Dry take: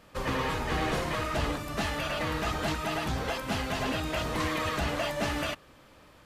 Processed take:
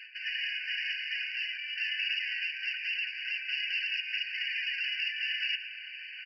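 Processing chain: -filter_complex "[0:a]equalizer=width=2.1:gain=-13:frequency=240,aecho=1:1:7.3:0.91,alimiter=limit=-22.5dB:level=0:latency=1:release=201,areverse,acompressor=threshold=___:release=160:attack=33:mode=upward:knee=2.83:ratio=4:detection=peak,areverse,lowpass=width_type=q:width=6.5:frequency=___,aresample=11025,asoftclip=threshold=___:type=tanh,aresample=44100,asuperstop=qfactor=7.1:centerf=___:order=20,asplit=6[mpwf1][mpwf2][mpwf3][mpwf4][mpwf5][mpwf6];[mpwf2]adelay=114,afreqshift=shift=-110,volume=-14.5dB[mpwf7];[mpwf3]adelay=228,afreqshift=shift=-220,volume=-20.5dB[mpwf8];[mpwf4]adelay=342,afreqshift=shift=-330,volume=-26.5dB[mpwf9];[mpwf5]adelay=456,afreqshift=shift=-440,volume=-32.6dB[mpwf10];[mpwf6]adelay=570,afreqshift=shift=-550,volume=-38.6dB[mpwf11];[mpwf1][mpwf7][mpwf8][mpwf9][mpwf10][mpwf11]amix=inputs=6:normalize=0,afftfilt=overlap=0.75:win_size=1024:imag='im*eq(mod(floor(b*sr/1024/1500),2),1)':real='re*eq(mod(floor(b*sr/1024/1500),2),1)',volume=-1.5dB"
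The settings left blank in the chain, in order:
-37dB, 3k, -22dB, 820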